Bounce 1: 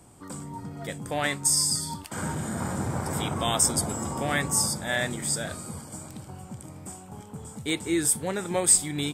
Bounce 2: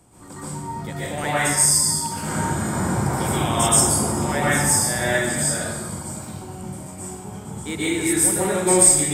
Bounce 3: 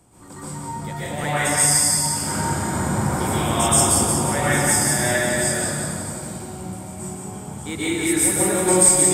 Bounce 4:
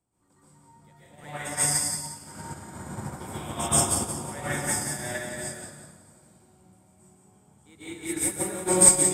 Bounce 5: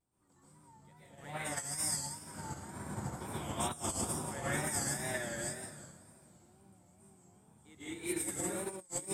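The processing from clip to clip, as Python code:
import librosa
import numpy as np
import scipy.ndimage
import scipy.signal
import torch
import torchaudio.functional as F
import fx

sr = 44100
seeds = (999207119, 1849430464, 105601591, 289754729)

y1 = fx.dynamic_eq(x, sr, hz=4100.0, q=1.5, threshold_db=-42.0, ratio=4.0, max_db=-6)
y1 = fx.rev_plate(y1, sr, seeds[0], rt60_s=0.96, hf_ratio=0.9, predelay_ms=110, drr_db=-9.5)
y1 = y1 * librosa.db_to_amplitude(-2.0)
y2 = fx.echo_split(y1, sr, split_hz=360.0, low_ms=360, high_ms=177, feedback_pct=52, wet_db=-4)
y2 = y2 * librosa.db_to_amplitude(-1.0)
y3 = fx.upward_expand(y2, sr, threshold_db=-28.0, expansion=2.5)
y4 = fx.over_compress(y3, sr, threshold_db=-28.0, ratio=-0.5)
y4 = fx.wow_flutter(y4, sr, seeds[1], rate_hz=2.1, depth_cents=98.0)
y4 = y4 * librosa.db_to_amplitude(-8.0)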